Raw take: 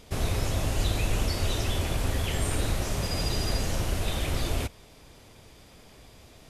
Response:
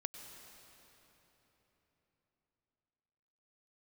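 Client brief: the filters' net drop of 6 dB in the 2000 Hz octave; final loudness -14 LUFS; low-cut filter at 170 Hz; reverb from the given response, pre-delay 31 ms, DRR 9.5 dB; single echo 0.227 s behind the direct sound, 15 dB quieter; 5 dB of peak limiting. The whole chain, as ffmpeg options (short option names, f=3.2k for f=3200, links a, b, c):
-filter_complex "[0:a]highpass=170,equalizer=f=2k:t=o:g=-8,alimiter=level_in=2dB:limit=-24dB:level=0:latency=1,volume=-2dB,aecho=1:1:227:0.178,asplit=2[a][b];[1:a]atrim=start_sample=2205,adelay=31[c];[b][c]afir=irnorm=-1:irlink=0,volume=-7.5dB[d];[a][d]amix=inputs=2:normalize=0,volume=20.5dB"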